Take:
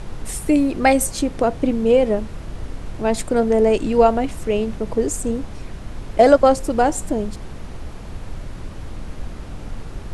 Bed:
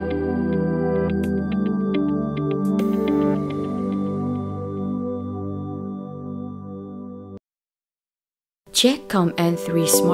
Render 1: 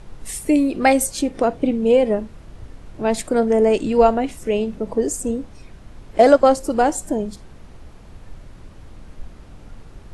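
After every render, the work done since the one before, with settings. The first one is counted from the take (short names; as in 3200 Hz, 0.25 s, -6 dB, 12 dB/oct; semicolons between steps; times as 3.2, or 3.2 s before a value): noise print and reduce 9 dB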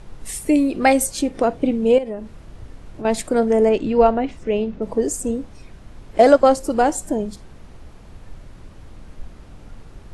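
1.98–3.05 compressor 2.5:1, threshold -29 dBFS; 3.69–4.82 air absorption 140 m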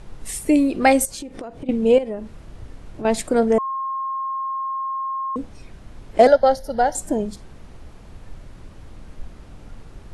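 1.05–1.69 compressor 16:1, threshold -29 dBFS; 3.58–5.36 bleep 1070 Hz -23 dBFS; 6.27–6.95 fixed phaser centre 1700 Hz, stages 8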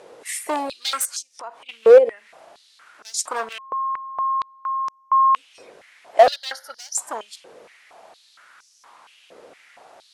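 hard clip -16.5 dBFS, distortion -7 dB; stepped high-pass 4.3 Hz 490–5700 Hz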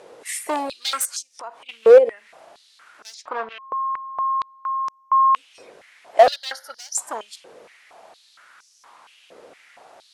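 3.14–3.63 air absorption 280 m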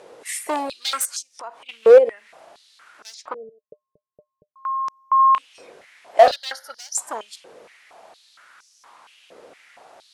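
3.34–4.56 rippled Chebyshev low-pass 620 Hz, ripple 9 dB; 5.16–6.32 doubler 31 ms -9.5 dB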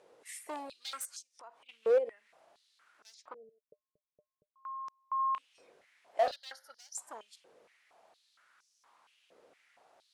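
gain -17 dB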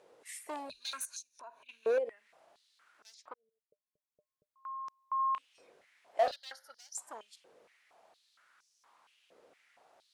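0.69–1.98 ripple EQ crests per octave 1.5, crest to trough 11 dB; 3.34–4.72 fade in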